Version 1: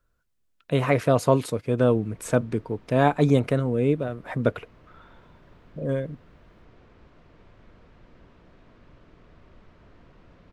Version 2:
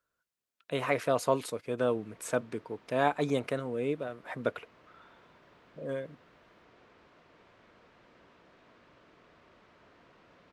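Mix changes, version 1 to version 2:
speech -4.0 dB; master: add HPF 550 Hz 6 dB/oct

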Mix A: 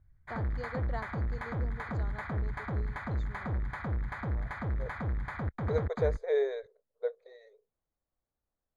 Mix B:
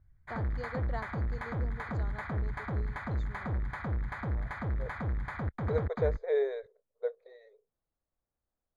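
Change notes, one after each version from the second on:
second voice: add air absorption 140 m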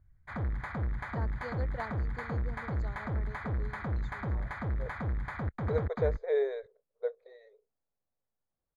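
first voice: entry +0.85 s

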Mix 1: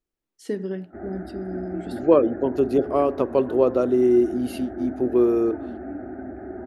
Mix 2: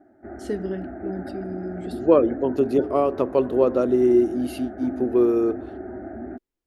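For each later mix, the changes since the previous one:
background: entry -0.70 s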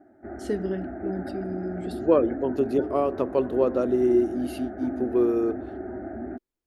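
second voice -3.5 dB

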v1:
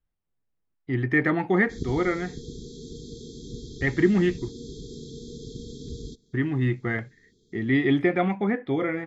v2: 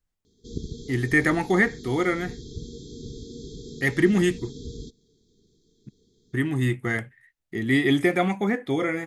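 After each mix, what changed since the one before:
speech: remove air absorption 300 m; background: entry -1.25 s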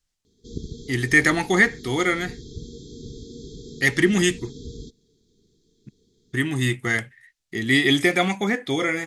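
speech: add bell 5400 Hz +13 dB 2.4 oct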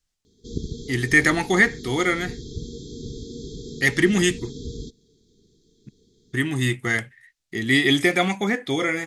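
background +3.5 dB

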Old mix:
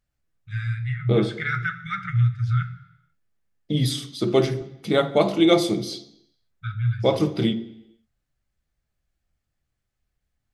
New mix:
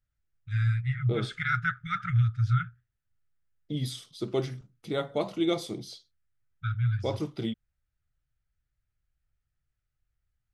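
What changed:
second voice -9.5 dB; reverb: off

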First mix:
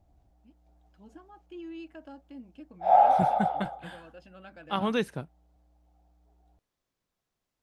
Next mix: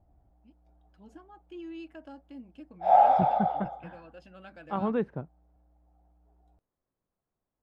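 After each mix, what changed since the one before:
second voice: add LPF 1100 Hz 12 dB/oct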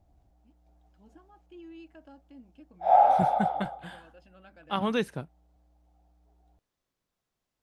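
first voice -5.5 dB; second voice: remove LPF 1100 Hz 12 dB/oct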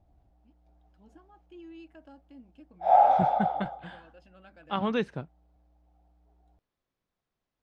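second voice: add air absorption 130 m

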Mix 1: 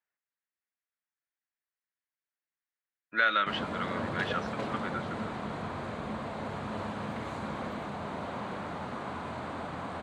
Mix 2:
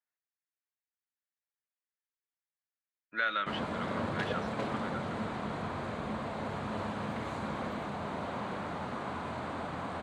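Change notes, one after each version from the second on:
speech -5.5 dB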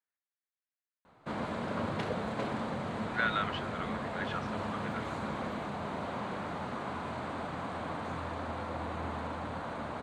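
background: entry -2.20 s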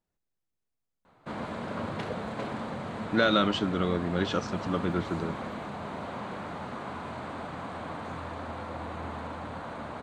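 speech: remove band-pass 1800 Hz, Q 2.2

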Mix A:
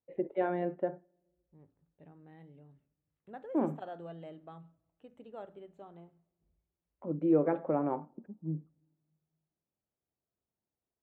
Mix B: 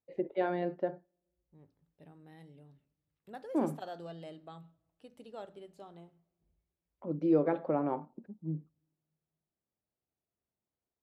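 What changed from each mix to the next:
first voice: send -7.5 dB; master: remove running mean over 9 samples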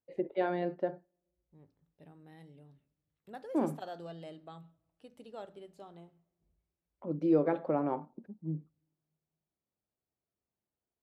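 first voice: remove air absorption 61 m

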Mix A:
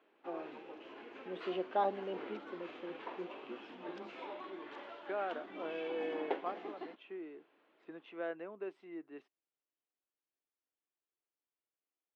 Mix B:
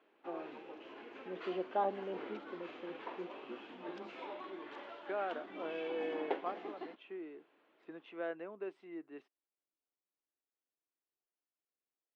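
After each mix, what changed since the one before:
first voice: add air absorption 350 m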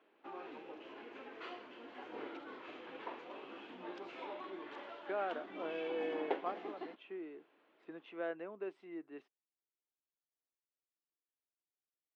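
first voice: muted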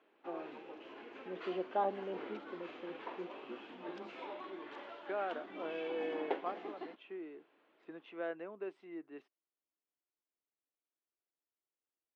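first voice: unmuted

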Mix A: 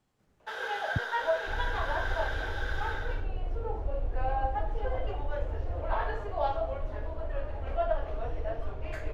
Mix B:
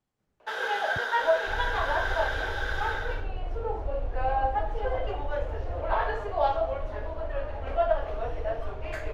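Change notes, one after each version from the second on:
speech -8.0 dB; first sound +5.0 dB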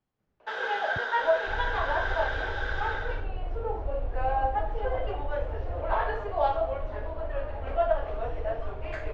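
master: add air absorption 120 m

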